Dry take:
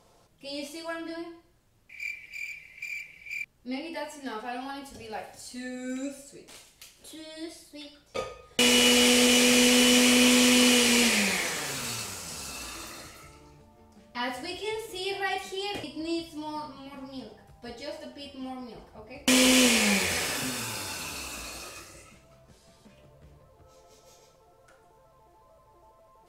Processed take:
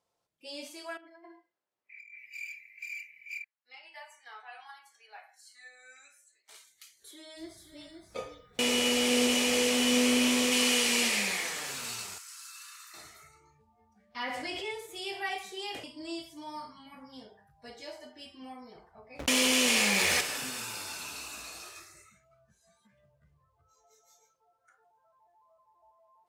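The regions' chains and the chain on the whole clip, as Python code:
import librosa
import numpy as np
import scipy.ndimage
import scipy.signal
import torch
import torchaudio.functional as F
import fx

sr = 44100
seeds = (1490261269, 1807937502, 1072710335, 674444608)

y = fx.chain(x, sr, fx.highpass(hz=370.0, slope=12),
    fx.high_shelf(hz=3000.0, db=-12.0),
    fx.over_compress(threshold_db=-47.0, ratio=-1.0), at=(0.97, 2.18))
y = fx.chain(y, sr, fx.highpass(hz=1100.0, slope=12),
    fx.high_shelf(hz=3000.0, db=-10.0), at=(3.38, 6.49))
y = fx.tilt_shelf(y, sr, db=4.0, hz=730.0, at=(7.37, 10.51), fade=0.02)
y = fx.dmg_noise_colour(y, sr, seeds[0], colour='brown', level_db=-47.0, at=(7.37, 10.51), fade=0.02)
y = fx.echo_single(y, sr, ms=522, db=-6.5, at=(7.37, 10.51), fade=0.02)
y = fx.chain(y, sr, fx.ladder_highpass(hz=1100.0, resonance_pct=40),
    fx.high_shelf(hz=5200.0, db=6.5), at=(12.18, 12.94))
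y = fx.chain(y, sr, fx.lowpass(hz=3800.0, slope=6),
    fx.peak_eq(hz=2200.0, db=6.0, octaves=0.21),
    fx.env_flatten(amount_pct=70), at=(14.23, 14.71))
y = fx.chain(y, sr, fx.notch(hz=7900.0, q=25.0),
    fx.backlash(play_db=-41.0),
    fx.env_flatten(amount_pct=70), at=(19.19, 20.21))
y = fx.noise_reduce_blind(y, sr, reduce_db=16)
y = scipy.signal.sosfilt(scipy.signal.butter(2, 53.0, 'highpass', fs=sr, output='sos'), y)
y = fx.low_shelf(y, sr, hz=360.0, db=-8.5)
y = y * 10.0 ** (-3.5 / 20.0)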